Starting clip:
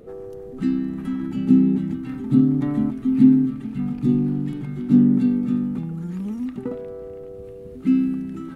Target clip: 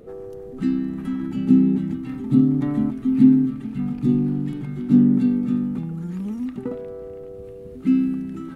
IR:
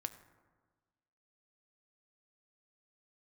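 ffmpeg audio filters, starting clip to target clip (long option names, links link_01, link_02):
-filter_complex "[0:a]asettb=1/sr,asplit=3[link_01][link_02][link_03];[link_01]atrim=end=1.974[link_04];[link_02]atrim=start=1.97:end=2.52,asetpts=PTS-STARTPTS,afade=type=in:duration=0.004:curve=qsin,afade=type=out:start_time=0.546:duration=0.004:curve=qsin,bandreject=frequency=1500:width=8.3[link_05];[link_03]atrim=start=2.516[link_06];[link_04][link_05]acrossfade=duration=0.004:curve1=hsin:curve2=qsin[link_07];[link_07][link_06]acrossfade=duration=0.004:curve1=qsin:curve2=hsin"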